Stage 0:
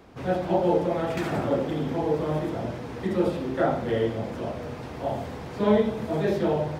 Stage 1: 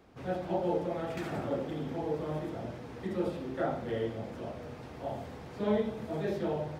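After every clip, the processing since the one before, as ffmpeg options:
ffmpeg -i in.wav -af "bandreject=frequency=1000:width=28,volume=-8.5dB" out.wav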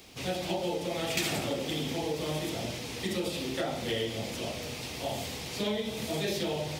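ffmpeg -i in.wav -af "acompressor=threshold=-32dB:ratio=6,aexciter=amount=3.8:drive=8.8:freq=2200,volume=3.5dB" out.wav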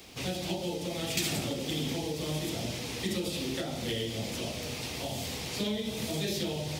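ffmpeg -i in.wav -filter_complex "[0:a]acrossover=split=330|3000[link_01][link_02][link_03];[link_02]acompressor=threshold=-41dB:ratio=4[link_04];[link_01][link_04][link_03]amix=inputs=3:normalize=0,volume=2dB" out.wav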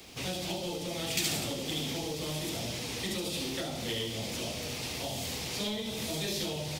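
ffmpeg -i in.wav -filter_complex "[0:a]acrossover=split=570|2800[link_01][link_02][link_03];[link_01]asoftclip=type=tanh:threshold=-33.5dB[link_04];[link_03]aecho=1:1:72:0.668[link_05];[link_04][link_02][link_05]amix=inputs=3:normalize=0" out.wav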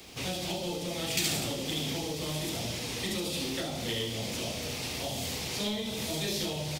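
ffmpeg -i in.wav -filter_complex "[0:a]asplit=2[link_01][link_02];[link_02]adelay=34,volume=-11.5dB[link_03];[link_01][link_03]amix=inputs=2:normalize=0,volume=1dB" out.wav

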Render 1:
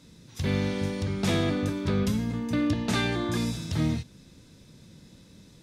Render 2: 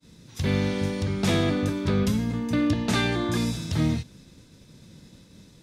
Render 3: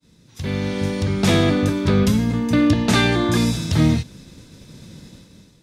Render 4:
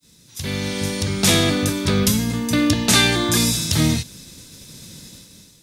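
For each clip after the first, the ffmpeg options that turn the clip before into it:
ffmpeg -i in.wav -af "agate=range=-33dB:threshold=-50dB:ratio=3:detection=peak,volume=2.5dB" out.wav
ffmpeg -i in.wav -af "dynaudnorm=framelen=300:gausssize=5:maxgain=13dB,volume=-3dB" out.wav
ffmpeg -i in.wav -af "crystalizer=i=4.5:c=0,volume=-2.5dB" out.wav

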